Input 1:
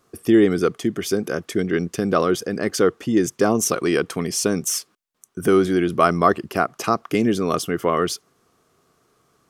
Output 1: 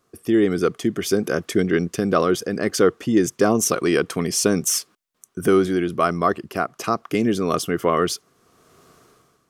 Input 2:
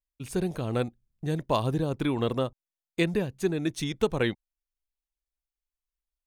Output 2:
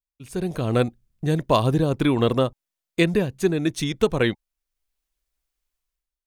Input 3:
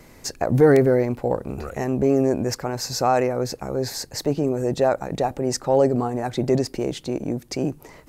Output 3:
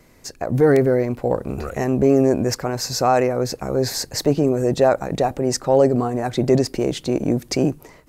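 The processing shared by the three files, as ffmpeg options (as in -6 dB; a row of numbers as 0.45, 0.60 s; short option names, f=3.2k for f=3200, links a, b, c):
-af "bandreject=f=850:w=17,dynaudnorm=f=140:g=7:m=15.5dB,volume=-4.5dB"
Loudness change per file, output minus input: -0.5, +6.5, +2.5 LU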